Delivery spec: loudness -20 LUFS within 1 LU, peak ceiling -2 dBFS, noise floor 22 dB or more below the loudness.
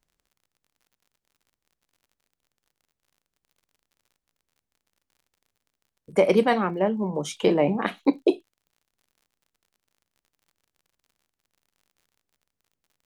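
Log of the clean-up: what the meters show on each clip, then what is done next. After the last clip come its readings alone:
tick rate 51 per s; loudness -23.5 LUFS; peak level -6.5 dBFS; loudness target -20.0 LUFS
-> de-click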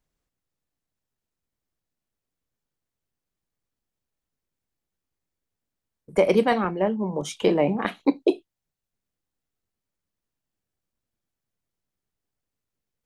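tick rate 0.077 per s; loudness -23.5 LUFS; peak level -6.5 dBFS; loudness target -20.0 LUFS
-> trim +3.5 dB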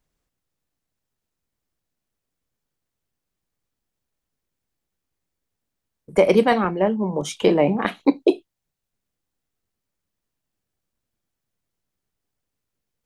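loudness -20.0 LUFS; peak level -3.0 dBFS; noise floor -83 dBFS

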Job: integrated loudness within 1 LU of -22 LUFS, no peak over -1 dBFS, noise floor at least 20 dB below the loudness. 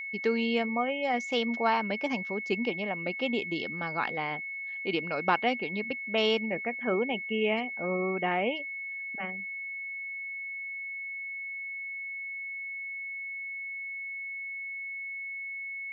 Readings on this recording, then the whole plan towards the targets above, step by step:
steady tone 2.2 kHz; tone level -35 dBFS; loudness -31.5 LUFS; peak level -11.0 dBFS; loudness target -22.0 LUFS
-> band-stop 2.2 kHz, Q 30; trim +9.5 dB

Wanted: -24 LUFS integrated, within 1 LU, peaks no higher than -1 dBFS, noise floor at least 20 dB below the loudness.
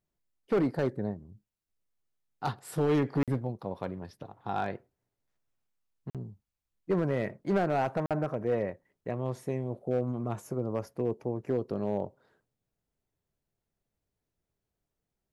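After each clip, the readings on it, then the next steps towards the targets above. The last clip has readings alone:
clipped samples 0.6%; clipping level -21.0 dBFS; dropouts 3; longest dropout 47 ms; loudness -32.0 LUFS; peak level -21.0 dBFS; loudness target -24.0 LUFS
-> clip repair -21 dBFS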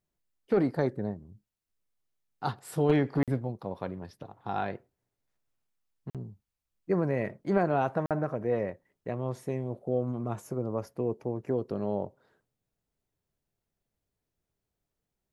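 clipped samples 0.0%; dropouts 3; longest dropout 47 ms
-> interpolate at 3.23/6.10/8.06 s, 47 ms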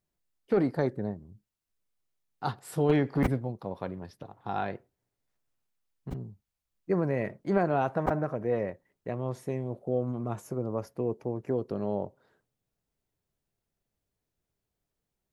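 dropouts 0; loudness -31.5 LUFS; peak level -12.0 dBFS; loudness target -24.0 LUFS
-> trim +7.5 dB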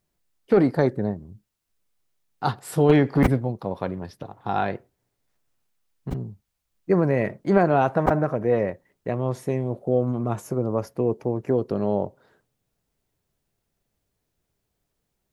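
loudness -24.0 LUFS; peak level -4.5 dBFS; noise floor -78 dBFS

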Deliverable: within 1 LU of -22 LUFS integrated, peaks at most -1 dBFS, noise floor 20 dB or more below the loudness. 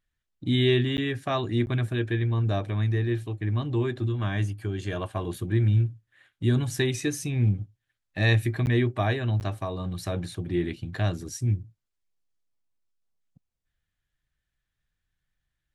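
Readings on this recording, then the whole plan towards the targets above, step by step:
dropouts 4; longest dropout 9.9 ms; loudness -27.0 LUFS; peak level -10.0 dBFS; loudness target -22.0 LUFS
-> interpolate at 0.97/1.66/8.66/9.40 s, 9.9 ms; trim +5 dB

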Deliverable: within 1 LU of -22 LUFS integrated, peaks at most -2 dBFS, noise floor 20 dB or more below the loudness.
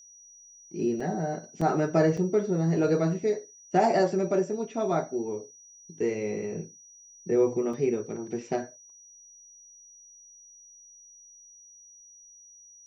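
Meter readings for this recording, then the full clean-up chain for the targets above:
dropouts 4; longest dropout 4.5 ms; steady tone 5.8 kHz; tone level -50 dBFS; loudness -28.0 LUFS; peak level -10.0 dBFS; loudness target -22.0 LUFS
-> interpolate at 1.00/1.61/2.17/7.73 s, 4.5 ms; band-stop 5.8 kHz, Q 30; trim +6 dB

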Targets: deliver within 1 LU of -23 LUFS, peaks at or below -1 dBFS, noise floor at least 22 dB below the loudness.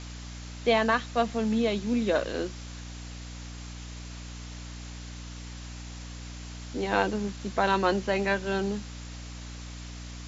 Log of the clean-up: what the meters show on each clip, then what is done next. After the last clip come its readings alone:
hum 60 Hz; highest harmonic 300 Hz; hum level -39 dBFS; noise floor -41 dBFS; noise floor target -50 dBFS; loudness -27.5 LUFS; peak level -10.0 dBFS; loudness target -23.0 LUFS
-> hum notches 60/120/180/240/300 Hz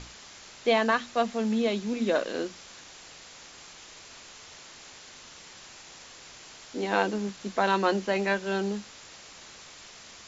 hum not found; noise floor -49 dBFS; noise floor target -50 dBFS
-> noise reduction 6 dB, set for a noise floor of -49 dBFS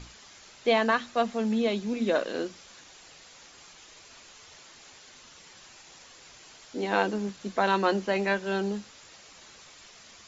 noise floor -52 dBFS; loudness -28.0 LUFS; peak level -10.0 dBFS; loudness target -23.0 LUFS
-> trim +5 dB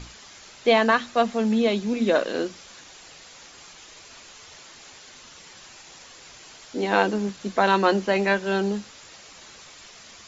loudness -23.0 LUFS; peak level -5.0 dBFS; noise floor -47 dBFS

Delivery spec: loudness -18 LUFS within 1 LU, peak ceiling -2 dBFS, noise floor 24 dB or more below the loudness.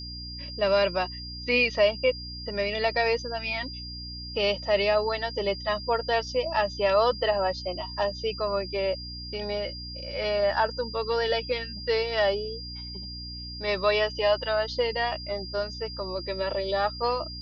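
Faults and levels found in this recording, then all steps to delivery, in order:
hum 60 Hz; highest harmonic 300 Hz; hum level -39 dBFS; steady tone 4.8 kHz; tone level -38 dBFS; loudness -27.5 LUFS; peak level -10.0 dBFS; loudness target -18.0 LUFS
-> hum notches 60/120/180/240/300 Hz; band-stop 4.8 kHz, Q 30; trim +9.5 dB; peak limiter -2 dBFS

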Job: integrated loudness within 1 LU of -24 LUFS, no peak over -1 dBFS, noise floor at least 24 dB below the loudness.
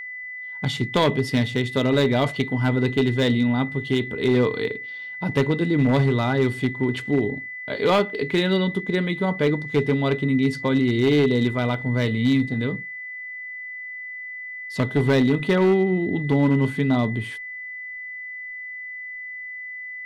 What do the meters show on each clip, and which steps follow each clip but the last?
clipped samples 0.8%; clipping level -12.5 dBFS; steady tone 2 kHz; tone level -32 dBFS; loudness -23.0 LUFS; peak level -12.5 dBFS; loudness target -24.0 LUFS
-> clip repair -12.5 dBFS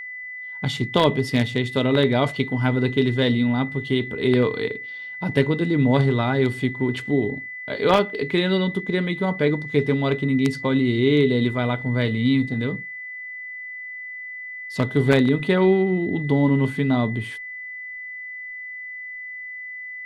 clipped samples 0.0%; steady tone 2 kHz; tone level -32 dBFS
-> band-stop 2 kHz, Q 30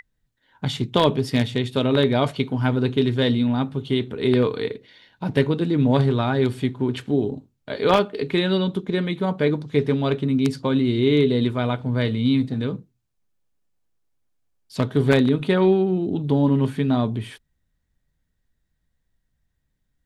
steady tone not found; loudness -21.5 LUFS; peak level -3.5 dBFS; loudness target -24.0 LUFS
-> trim -2.5 dB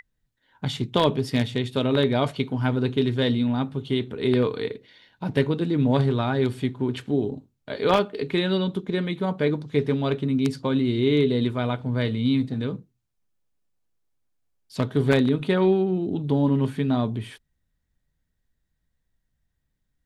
loudness -24.0 LUFS; peak level -6.0 dBFS; noise floor -76 dBFS

